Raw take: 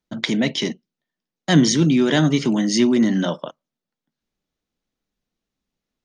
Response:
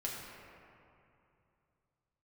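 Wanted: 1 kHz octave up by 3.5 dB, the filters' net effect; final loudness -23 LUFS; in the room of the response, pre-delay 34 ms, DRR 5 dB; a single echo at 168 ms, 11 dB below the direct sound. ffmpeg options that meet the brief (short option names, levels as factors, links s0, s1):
-filter_complex "[0:a]equalizer=f=1000:t=o:g=5,aecho=1:1:168:0.282,asplit=2[s0][s1];[1:a]atrim=start_sample=2205,adelay=34[s2];[s1][s2]afir=irnorm=-1:irlink=0,volume=0.447[s3];[s0][s3]amix=inputs=2:normalize=0,volume=0.501"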